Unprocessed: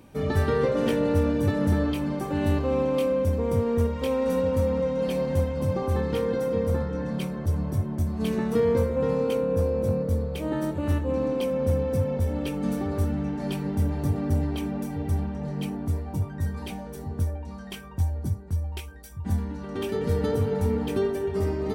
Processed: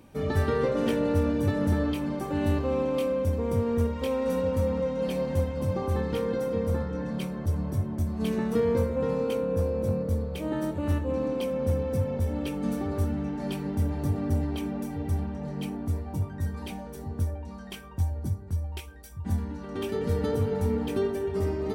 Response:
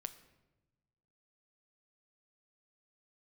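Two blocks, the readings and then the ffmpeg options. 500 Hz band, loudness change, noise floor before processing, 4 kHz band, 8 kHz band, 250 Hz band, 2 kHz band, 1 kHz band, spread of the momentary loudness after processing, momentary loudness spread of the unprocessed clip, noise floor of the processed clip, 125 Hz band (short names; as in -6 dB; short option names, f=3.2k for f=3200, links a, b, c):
-2.5 dB, -2.0 dB, -39 dBFS, -2.0 dB, -2.0 dB, -2.0 dB, -2.0 dB, -2.0 dB, 7 LU, 7 LU, -41 dBFS, -2.0 dB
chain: -filter_complex "[0:a]asplit=2[a][b];[1:a]atrim=start_sample=2205,asetrate=83790,aresample=44100[c];[b][c]afir=irnorm=-1:irlink=0,volume=4.5dB[d];[a][d]amix=inputs=2:normalize=0,volume=-6dB"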